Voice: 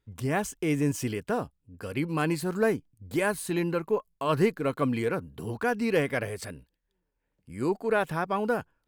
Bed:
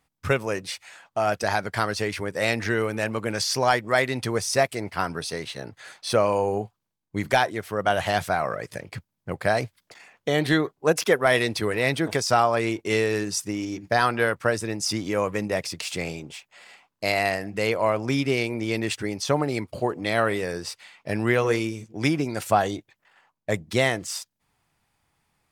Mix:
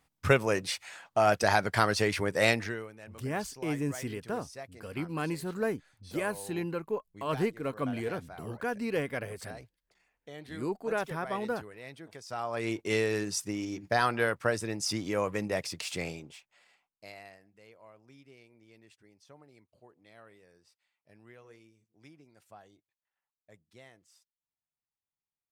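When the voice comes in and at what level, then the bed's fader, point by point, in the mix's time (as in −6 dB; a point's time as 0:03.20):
3.00 s, −6.0 dB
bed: 0:02.49 −0.5 dB
0:02.96 −23 dB
0:12.20 −23 dB
0:12.72 −5.5 dB
0:16.05 −5.5 dB
0:17.59 −32.5 dB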